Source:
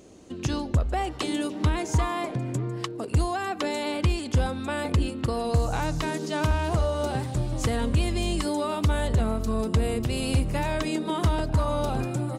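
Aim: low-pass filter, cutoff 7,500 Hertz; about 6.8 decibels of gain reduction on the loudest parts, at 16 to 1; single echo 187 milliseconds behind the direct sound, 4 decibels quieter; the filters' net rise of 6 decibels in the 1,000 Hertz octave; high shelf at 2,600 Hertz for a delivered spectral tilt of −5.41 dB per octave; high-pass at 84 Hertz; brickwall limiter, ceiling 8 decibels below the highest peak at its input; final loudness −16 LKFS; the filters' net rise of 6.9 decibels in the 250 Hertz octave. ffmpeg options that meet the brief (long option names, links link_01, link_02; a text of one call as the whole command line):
ffmpeg -i in.wav -af "highpass=84,lowpass=7500,equalizer=frequency=250:width_type=o:gain=8.5,equalizer=frequency=1000:width_type=o:gain=6,highshelf=frequency=2600:gain=6.5,acompressor=threshold=-23dB:ratio=16,alimiter=limit=-20dB:level=0:latency=1,aecho=1:1:187:0.631,volume=12dB" out.wav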